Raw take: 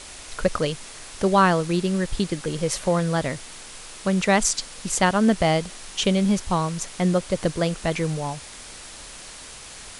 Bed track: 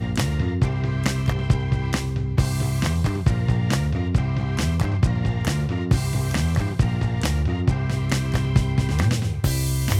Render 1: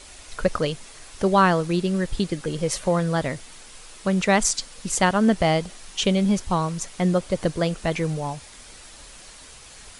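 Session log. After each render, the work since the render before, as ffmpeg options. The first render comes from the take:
-af "afftdn=nr=6:nf=-41"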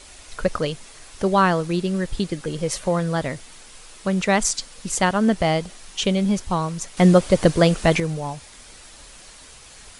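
-filter_complex "[0:a]asplit=3[a][b][c];[a]atrim=end=6.972[d];[b]atrim=start=6.968:end=8.002,asetpts=PTS-STARTPTS,volume=7.5dB[e];[c]atrim=start=7.998[f];[d][e]acrossfade=d=0.004:c1=hsin:c2=hsin[g];[g][f]acrossfade=d=0.004:c1=hsin:c2=hsin"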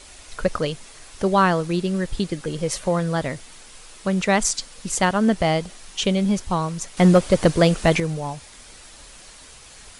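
-af "asoftclip=type=hard:threshold=-7dB"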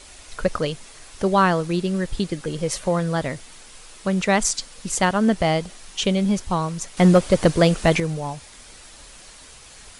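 -af anull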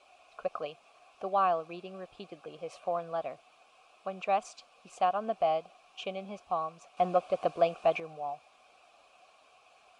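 -filter_complex "[0:a]asplit=3[a][b][c];[a]bandpass=f=730:t=q:w=8,volume=0dB[d];[b]bandpass=f=1.09k:t=q:w=8,volume=-6dB[e];[c]bandpass=f=2.44k:t=q:w=8,volume=-9dB[f];[d][e][f]amix=inputs=3:normalize=0"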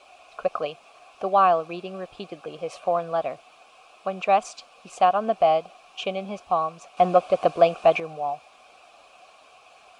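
-af "volume=9dB"

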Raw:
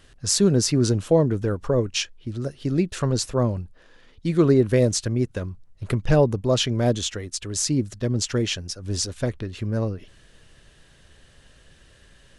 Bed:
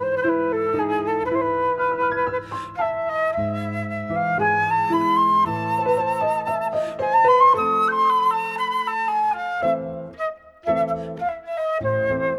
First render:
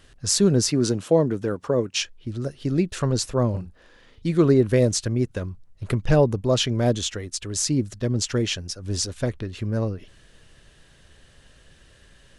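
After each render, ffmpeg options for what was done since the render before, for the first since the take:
-filter_complex "[0:a]asettb=1/sr,asplit=3[a][b][c];[a]atrim=end=0.694[d];[b]atrim=start=0.69:end=2.02,asetpts=PTS-STARTPTS,afade=t=in:d=0.004:c=qsin,afade=t=out:st=1.326:d=0.004:c=qsin,highpass=150[e];[c]atrim=start=2.016[f];[d][e]acrossfade=d=0.004:c1=hsin:c2=qsin[g];[g][f]acrossfade=d=0.004:c1=qsin:c2=hsin,asettb=1/sr,asplit=3[h][i][j];[h]atrim=end=3.504[k];[i]atrim=start=3.5:end=4.27,asetpts=PTS-STARTPTS,afade=t=in:d=0.004:c=qsin,afade=t=out:st=0.766:d=0.004:c=qsin,asplit=2[l][m];[m]adelay=39,volume=-5dB[n];[l][n]amix=inputs=2:normalize=0,atrim=end_sample=33957[o];[j]atrim=start=4.266[p];[k][o]acrossfade=d=0.004:c1=hsin:c2=qsin[q];[q][p]acrossfade=d=0.004:c1=qsin:c2=hsin"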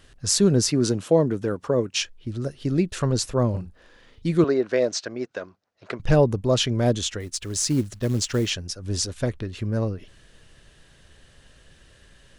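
-filter_complex "[0:a]asettb=1/sr,asplit=3[a][b][c];[a]atrim=end=4.444[d];[b]atrim=start=4.44:end=6,asetpts=PTS-STARTPTS,afade=t=in:d=0.004:c=qsin,afade=t=out:st=1.556:d=0.004:c=qsin,highpass=400,equalizer=f=680:t=q:w=4:g=5,equalizer=f=1.5k:t=q:w=4:g=4,equalizer=f=3.2k:t=q:w=4:g=-3,lowpass=f=6k:w=0.5412,lowpass=f=6k:w=1.3066[e];[c]atrim=start=5.996[f];[d][e]acrossfade=d=0.004:c1=hsin:c2=qsin[g];[g][f]acrossfade=d=0.004:c1=qsin:c2=hsin,asettb=1/sr,asplit=3[h][i][j];[h]atrim=end=7.204[k];[i]atrim=start=7.2:end=8.5,asetpts=PTS-STARTPTS,afade=t=in:d=0.004:c=qsin,afade=t=out:st=1.296:d=0.004:c=qsin,acrusher=bits=6:mode=log:mix=0:aa=0.000001[l];[j]atrim=start=8.496[m];[k][l]acrossfade=d=0.004:c1=hsin:c2=qsin[n];[n][m]acrossfade=d=0.004:c1=qsin:c2=hsin"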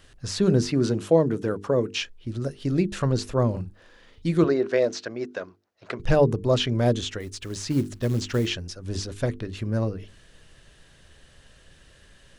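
-filter_complex "[0:a]acrossover=split=4000[a][b];[b]acompressor=threshold=-39dB:ratio=4:attack=1:release=60[c];[a][c]amix=inputs=2:normalize=0,bandreject=f=50:t=h:w=6,bandreject=f=100:t=h:w=6,bandreject=f=150:t=h:w=6,bandreject=f=200:t=h:w=6,bandreject=f=250:t=h:w=6,bandreject=f=300:t=h:w=6,bandreject=f=350:t=h:w=6,bandreject=f=400:t=h:w=6,bandreject=f=450:t=h:w=6"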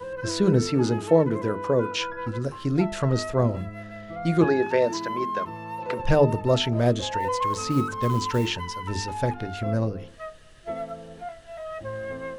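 -filter_complex "[1:a]volume=-12dB[a];[0:a][a]amix=inputs=2:normalize=0"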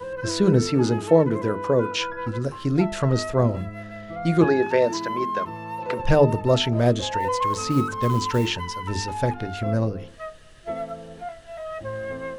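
-af "volume=2dB"

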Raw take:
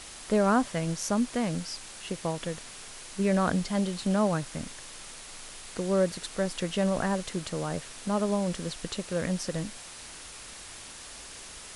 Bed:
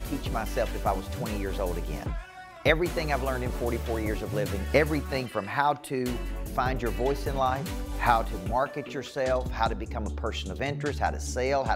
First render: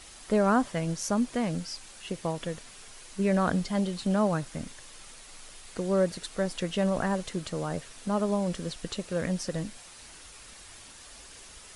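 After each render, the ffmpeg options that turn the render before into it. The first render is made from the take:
-af "afftdn=nr=6:nf=-45"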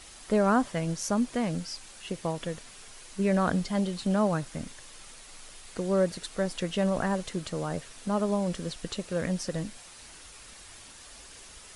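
-af anull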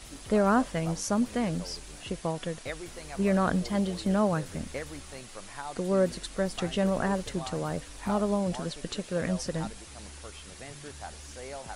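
-filter_complex "[1:a]volume=-15dB[a];[0:a][a]amix=inputs=2:normalize=0"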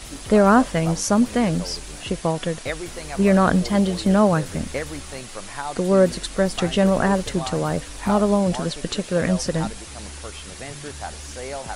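-af "volume=9dB"

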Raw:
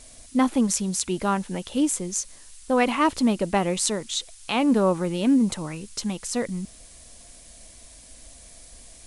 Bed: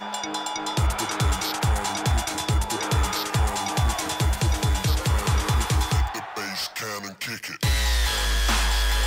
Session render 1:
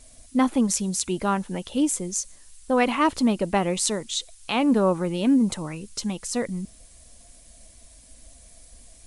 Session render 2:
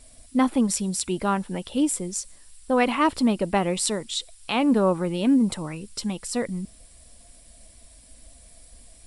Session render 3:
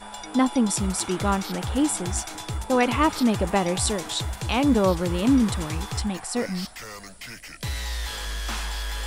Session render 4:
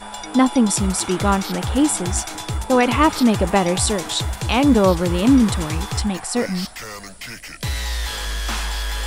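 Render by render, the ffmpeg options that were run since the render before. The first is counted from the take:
-af "afftdn=nr=6:nf=-48"
-af "bandreject=f=6.4k:w=5.7"
-filter_complex "[1:a]volume=-8dB[a];[0:a][a]amix=inputs=2:normalize=0"
-af "volume=5.5dB,alimiter=limit=-3dB:level=0:latency=1"

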